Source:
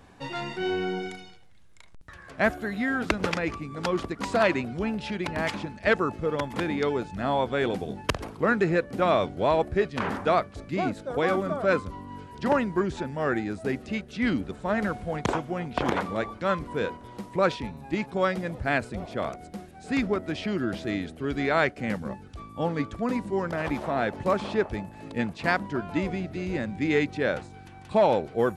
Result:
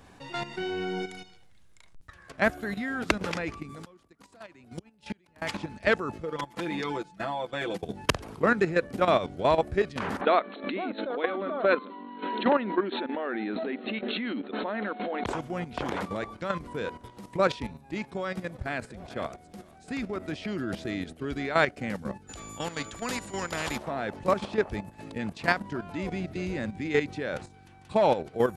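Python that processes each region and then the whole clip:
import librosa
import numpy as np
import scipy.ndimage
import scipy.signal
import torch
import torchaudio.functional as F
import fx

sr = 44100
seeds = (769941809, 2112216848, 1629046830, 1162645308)

y = fx.chain(x, sr, fx.high_shelf(hz=7800.0, db=11.5),
    fx.gate_flip(shuts_db=-23.0, range_db=-28),
    fx.band_squash(depth_pct=40), at=(3.69, 5.42))
y = fx.chain(y, sr, fx.low_shelf(hz=160.0, db=-9.5),
    fx.comb(ms=6.0, depth=0.9),
    fx.level_steps(step_db=16), at=(6.22, 7.83))
y = fx.chain(y, sr, fx.brickwall_bandpass(low_hz=200.0, high_hz=4300.0),
    fx.pre_swell(db_per_s=47.0), at=(10.21, 15.26))
y = fx.chain(y, sr, fx.comb_fb(f0_hz=75.0, decay_s=1.2, harmonics='all', damping=0.0, mix_pct=30),
    fx.echo_single(ms=440, db=-19.5), at=(17.68, 20.25))
y = fx.dmg_tone(y, sr, hz=7000.0, level_db=-51.0, at=(22.27, 23.75), fade=0.02)
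y = fx.spectral_comp(y, sr, ratio=2.0, at=(22.27, 23.75), fade=0.02)
y = fx.high_shelf(y, sr, hz=3700.0, db=4.0)
y = fx.level_steps(y, sr, step_db=11)
y = F.gain(torch.from_numpy(y), 1.5).numpy()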